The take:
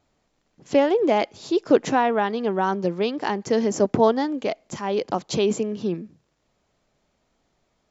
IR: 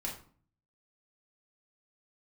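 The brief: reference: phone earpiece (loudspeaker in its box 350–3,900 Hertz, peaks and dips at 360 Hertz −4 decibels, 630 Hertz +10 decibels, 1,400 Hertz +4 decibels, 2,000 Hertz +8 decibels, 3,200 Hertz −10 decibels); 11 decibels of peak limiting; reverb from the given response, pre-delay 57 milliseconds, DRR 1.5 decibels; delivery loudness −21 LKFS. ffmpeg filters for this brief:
-filter_complex "[0:a]alimiter=limit=-16dB:level=0:latency=1,asplit=2[link_01][link_02];[1:a]atrim=start_sample=2205,adelay=57[link_03];[link_02][link_03]afir=irnorm=-1:irlink=0,volume=-3dB[link_04];[link_01][link_04]amix=inputs=2:normalize=0,highpass=350,equalizer=frequency=360:width_type=q:width=4:gain=-4,equalizer=frequency=630:width_type=q:width=4:gain=10,equalizer=frequency=1400:width_type=q:width=4:gain=4,equalizer=frequency=2000:width_type=q:width=4:gain=8,equalizer=frequency=3200:width_type=q:width=4:gain=-10,lowpass=frequency=3900:width=0.5412,lowpass=frequency=3900:width=1.3066,volume=2.5dB"

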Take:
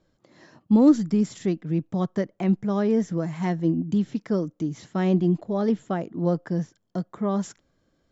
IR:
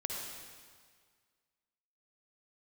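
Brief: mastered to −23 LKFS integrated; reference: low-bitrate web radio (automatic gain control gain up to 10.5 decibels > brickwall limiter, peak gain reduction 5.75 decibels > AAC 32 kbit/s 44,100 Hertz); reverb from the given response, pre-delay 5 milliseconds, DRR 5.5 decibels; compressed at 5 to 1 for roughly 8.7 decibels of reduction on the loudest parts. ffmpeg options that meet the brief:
-filter_complex "[0:a]acompressor=threshold=-22dB:ratio=5,asplit=2[link_01][link_02];[1:a]atrim=start_sample=2205,adelay=5[link_03];[link_02][link_03]afir=irnorm=-1:irlink=0,volume=-7.5dB[link_04];[link_01][link_04]amix=inputs=2:normalize=0,dynaudnorm=maxgain=10.5dB,alimiter=limit=-19dB:level=0:latency=1,volume=5.5dB" -ar 44100 -c:a aac -b:a 32k

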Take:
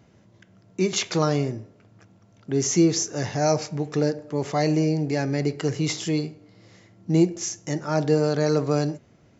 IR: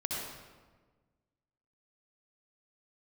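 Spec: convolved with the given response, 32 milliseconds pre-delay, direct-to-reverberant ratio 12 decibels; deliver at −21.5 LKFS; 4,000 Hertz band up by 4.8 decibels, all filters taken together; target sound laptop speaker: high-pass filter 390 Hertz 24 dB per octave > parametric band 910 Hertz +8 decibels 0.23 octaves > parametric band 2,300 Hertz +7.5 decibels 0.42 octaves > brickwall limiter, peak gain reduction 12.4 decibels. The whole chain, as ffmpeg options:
-filter_complex "[0:a]equalizer=frequency=4000:width_type=o:gain=5.5,asplit=2[link_01][link_02];[1:a]atrim=start_sample=2205,adelay=32[link_03];[link_02][link_03]afir=irnorm=-1:irlink=0,volume=-16.5dB[link_04];[link_01][link_04]amix=inputs=2:normalize=0,highpass=frequency=390:width=0.5412,highpass=frequency=390:width=1.3066,equalizer=frequency=910:width_type=o:width=0.23:gain=8,equalizer=frequency=2300:width_type=o:width=0.42:gain=7.5,volume=9dB,alimiter=limit=-11.5dB:level=0:latency=1"

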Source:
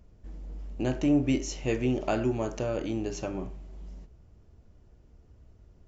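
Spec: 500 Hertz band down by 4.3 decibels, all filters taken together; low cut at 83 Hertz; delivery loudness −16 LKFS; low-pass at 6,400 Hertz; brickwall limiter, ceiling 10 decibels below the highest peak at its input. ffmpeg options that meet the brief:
ffmpeg -i in.wav -af "highpass=83,lowpass=6400,equalizer=frequency=500:width_type=o:gain=-6,volume=20.5dB,alimiter=limit=-5.5dB:level=0:latency=1" out.wav

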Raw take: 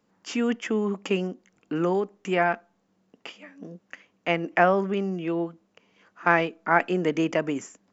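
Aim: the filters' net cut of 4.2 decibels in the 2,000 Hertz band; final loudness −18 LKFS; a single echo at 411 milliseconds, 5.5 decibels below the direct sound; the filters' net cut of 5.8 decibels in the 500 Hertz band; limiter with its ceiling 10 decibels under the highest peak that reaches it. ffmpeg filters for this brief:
ffmpeg -i in.wav -af "equalizer=frequency=500:width_type=o:gain=-8,equalizer=frequency=2000:width_type=o:gain=-5,alimiter=limit=-18.5dB:level=0:latency=1,aecho=1:1:411:0.531,volume=13dB" out.wav

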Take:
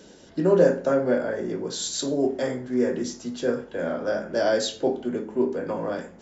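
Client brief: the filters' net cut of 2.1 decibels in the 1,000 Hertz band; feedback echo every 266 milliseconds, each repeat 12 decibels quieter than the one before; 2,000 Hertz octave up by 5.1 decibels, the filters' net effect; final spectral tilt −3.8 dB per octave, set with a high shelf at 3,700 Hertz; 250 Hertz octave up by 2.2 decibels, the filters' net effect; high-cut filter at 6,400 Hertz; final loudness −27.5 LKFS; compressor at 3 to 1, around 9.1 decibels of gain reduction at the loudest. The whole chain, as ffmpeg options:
ffmpeg -i in.wav -af "lowpass=6400,equalizer=frequency=250:width_type=o:gain=3,equalizer=frequency=1000:width_type=o:gain=-7,equalizer=frequency=2000:width_type=o:gain=9,highshelf=frequency=3700:gain=6.5,acompressor=threshold=-25dB:ratio=3,aecho=1:1:266|532|798:0.251|0.0628|0.0157,volume=1dB" out.wav

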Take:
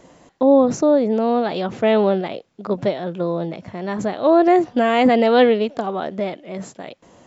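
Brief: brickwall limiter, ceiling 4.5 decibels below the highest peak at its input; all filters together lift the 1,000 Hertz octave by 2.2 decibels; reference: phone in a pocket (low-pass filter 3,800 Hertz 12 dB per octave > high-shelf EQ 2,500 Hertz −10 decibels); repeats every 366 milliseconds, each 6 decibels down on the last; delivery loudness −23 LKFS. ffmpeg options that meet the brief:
ffmpeg -i in.wav -af "equalizer=frequency=1000:width_type=o:gain=5,alimiter=limit=-6.5dB:level=0:latency=1,lowpass=3800,highshelf=frequency=2500:gain=-10,aecho=1:1:366|732|1098|1464|1830|2196:0.501|0.251|0.125|0.0626|0.0313|0.0157,volume=-5dB" out.wav

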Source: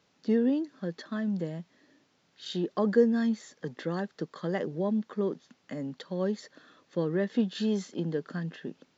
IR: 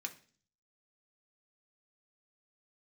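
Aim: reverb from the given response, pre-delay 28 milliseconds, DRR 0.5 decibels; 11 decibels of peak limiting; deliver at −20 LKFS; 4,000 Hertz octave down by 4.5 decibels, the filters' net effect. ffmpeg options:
-filter_complex "[0:a]equalizer=frequency=4000:width_type=o:gain=-5.5,alimiter=limit=-23dB:level=0:latency=1,asplit=2[link_01][link_02];[1:a]atrim=start_sample=2205,adelay=28[link_03];[link_02][link_03]afir=irnorm=-1:irlink=0,volume=0.5dB[link_04];[link_01][link_04]amix=inputs=2:normalize=0,volume=11.5dB"

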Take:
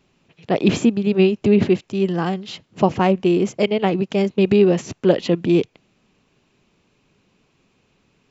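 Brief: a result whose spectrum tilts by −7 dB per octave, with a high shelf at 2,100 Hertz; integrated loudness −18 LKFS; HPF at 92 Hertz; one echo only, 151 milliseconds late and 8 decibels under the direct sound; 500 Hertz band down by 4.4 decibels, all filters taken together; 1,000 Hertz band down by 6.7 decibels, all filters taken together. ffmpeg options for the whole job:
ffmpeg -i in.wav -af "highpass=92,equalizer=frequency=500:width_type=o:gain=-5,equalizer=frequency=1000:width_type=o:gain=-6,highshelf=frequency=2100:gain=-6,aecho=1:1:151:0.398,volume=3dB" out.wav

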